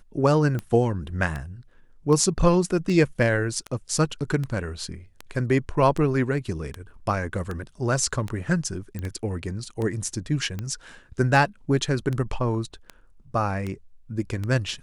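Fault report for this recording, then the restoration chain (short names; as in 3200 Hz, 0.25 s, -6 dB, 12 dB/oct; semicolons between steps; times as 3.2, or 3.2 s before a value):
tick 78 rpm -18 dBFS
8.99 pop -20 dBFS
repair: de-click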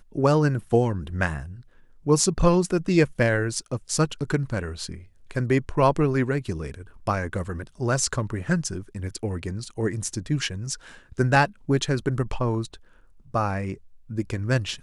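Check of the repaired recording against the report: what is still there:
none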